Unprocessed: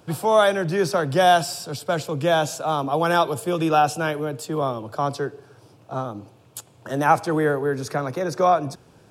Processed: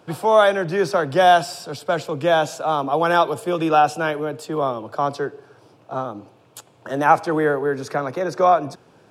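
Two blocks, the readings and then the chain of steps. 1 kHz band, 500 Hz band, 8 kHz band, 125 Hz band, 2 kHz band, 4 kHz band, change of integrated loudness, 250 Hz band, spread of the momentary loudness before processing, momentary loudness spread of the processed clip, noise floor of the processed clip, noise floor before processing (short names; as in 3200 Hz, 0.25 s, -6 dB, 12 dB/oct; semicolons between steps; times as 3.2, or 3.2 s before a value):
+2.5 dB, +2.5 dB, -4.0 dB, -3.0 dB, +2.5 dB, 0.0 dB, +2.0 dB, +0.5 dB, 13 LU, 14 LU, -54 dBFS, -53 dBFS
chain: HPF 280 Hz 6 dB/oct; high shelf 5000 Hz -10.5 dB; gain +3.5 dB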